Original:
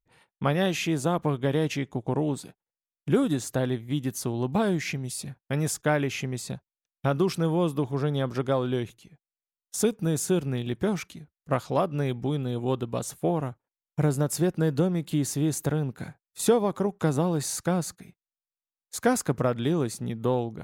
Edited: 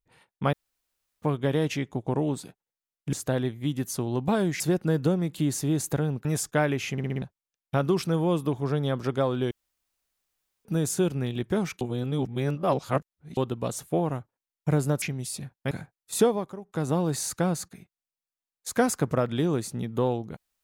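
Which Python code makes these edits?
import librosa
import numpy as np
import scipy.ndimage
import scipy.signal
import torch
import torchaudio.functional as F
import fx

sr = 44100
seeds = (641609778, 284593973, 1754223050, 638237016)

y = fx.edit(x, sr, fx.room_tone_fill(start_s=0.53, length_s=0.69),
    fx.cut(start_s=3.13, length_s=0.27),
    fx.swap(start_s=4.87, length_s=0.69, other_s=14.33, other_length_s=1.65),
    fx.stutter_over(start_s=6.23, slice_s=0.06, count=5),
    fx.room_tone_fill(start_s=8.82, length_s=1.14),
    fx.reverse_span(start_s=11.12, length_s=1.56),
    fx.fade_down_up(start_s=16.51, length_s=0.72, db=-13.5, fade_s=0.32), tone=tone)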